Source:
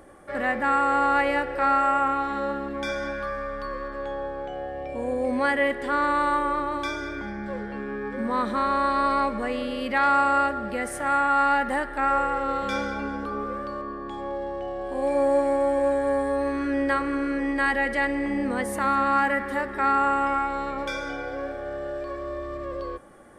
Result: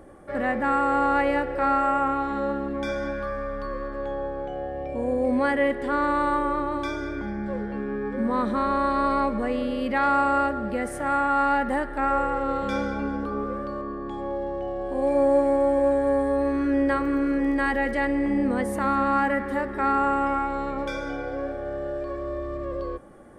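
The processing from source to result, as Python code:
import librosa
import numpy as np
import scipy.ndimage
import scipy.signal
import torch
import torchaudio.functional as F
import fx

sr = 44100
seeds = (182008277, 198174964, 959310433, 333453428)

y = fx.dmg_crackle(x, sr, seeds[0], per_s=fx.line((17.0, 18.0), (17.97, 57.0)), level_db=-35.0, at=(17.0, 17.97), fade=0.02)
y = fx.tilt_shelf(y, sr, db=4.5, hz=790.0)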